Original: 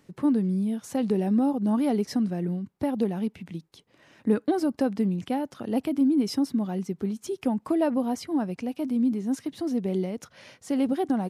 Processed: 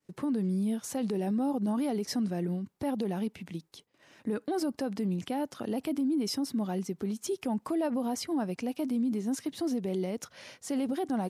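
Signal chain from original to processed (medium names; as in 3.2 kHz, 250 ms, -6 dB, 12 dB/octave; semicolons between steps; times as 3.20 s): expander -53 dBFS; tone controls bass -4 dB, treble +4 dB; peak limiter -24 dBFS, peak gain reduction 10.5 dB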